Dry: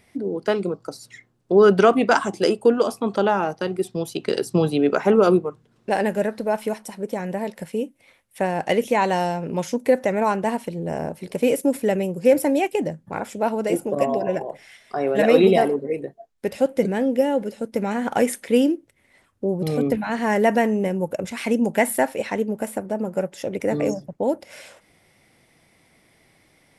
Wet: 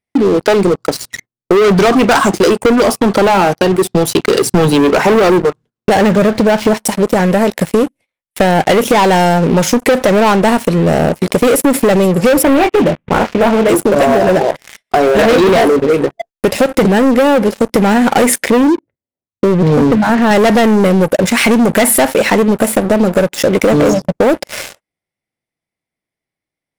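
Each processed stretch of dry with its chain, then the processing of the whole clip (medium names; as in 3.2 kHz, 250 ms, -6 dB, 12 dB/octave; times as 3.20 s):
5.96–6.77 s: block-companded coder 7-bit + peaking EQ 110 Hz +12 dB 1.1 oct + decimation joined by straight lines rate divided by 3×
12.43–13.69 s: CVSD coder 16 kbps + doubling 22 ms -8.5 dB
18.50–20.31 s: level-controlled noise filter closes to 480 Hz, open at -17 dBFS + high-pass 59 Hz 24 dB/octave + tape spacing loss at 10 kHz 33 dB
whole clip: gate -48 dBFS, range -21 dB; waveshaping leveller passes 5; compression, threshold -12 dBFS; trim +4 dB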